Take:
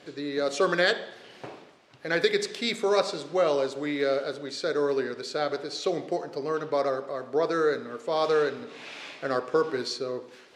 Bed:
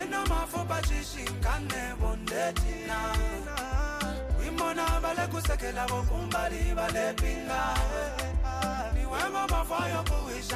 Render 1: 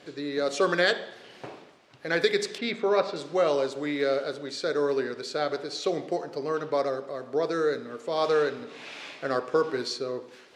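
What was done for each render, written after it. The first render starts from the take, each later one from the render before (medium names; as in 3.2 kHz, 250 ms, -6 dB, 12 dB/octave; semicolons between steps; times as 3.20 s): 2.58–3.16 s: low-pass 3.1 kHz; 6.81–8.18 s: dynamic bell 1.1 kHz, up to -4 dB, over -39 dBFS, Q 0.8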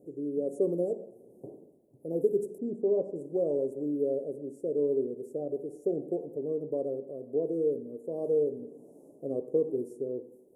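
inverse Chebyshev band-stop 1.5–4.2 kHz, stop band 70 dB; peaking EQ 75 Hz -5.5 dB 1.6 oct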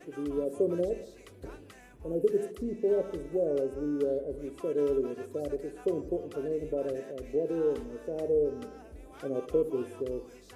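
add bed -20.5 dB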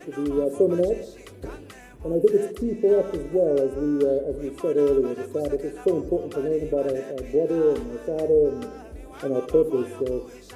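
trim +8 dB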